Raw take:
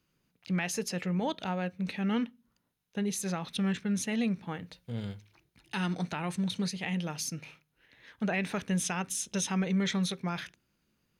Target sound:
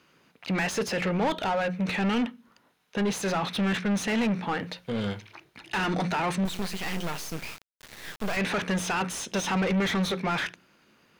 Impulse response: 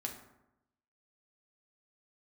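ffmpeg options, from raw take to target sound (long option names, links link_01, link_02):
-filter_complex "[0:a]bandreject=frequency=60:width_type=h:width=6,bandreject=frequency=120:width_type=h:width=6,bandreject=frequency=180:width_type=h:width=6,asplit=2[link_01][link_02];[link_02]highpass=frequency=720:poles=1,volume=28dB,asoftclip=type=tanh:threshold=-17.5dB[link_03];[link_01][link_03]amix=inputs=2:normalize=0,lowpass=frequency=1800:poles=1,volume=-6dB,asettb=1/sr,asplit=3[link_04][link_05][link_06];[link_04]atrim=end=6.454[link_07];[link_05]atrim=start=6.45:end=8.37,asetpts=PTS-STARTPTS,afade=type=in:duration=0.004:curve=qsin,afade=type=out:start_time=1.916:duration=0.004:curve=qsin,acrusher=bits=4:dc=4:mix=0:aa=0.000001[link_08];[link_06]atrim=start=8.366[link_09];[link_07][link_08]acrossfade=duration=0.004:curve1=hsin:curve2=qsin[link_10];[link_10][link_09]acrossfade=duration=0.004:curve1=qsin:curve2=hsin"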